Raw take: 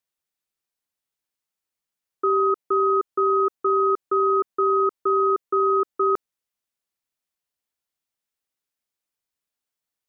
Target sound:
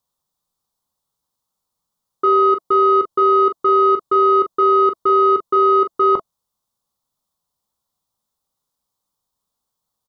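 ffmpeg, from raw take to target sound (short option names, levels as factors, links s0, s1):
-af "acontrast=79,bandreject=f=660:w=12,acontrast=60,firequalizer=gain_entry='entry(180,0);entry(330,-8);entry(570,-3);entry(1100,1);entry(1600,-17);entry(2500,-21);entry(3500,-7)':delay=0.05:min_phase=1,aecho=1:1:19|41:0.266|0.335"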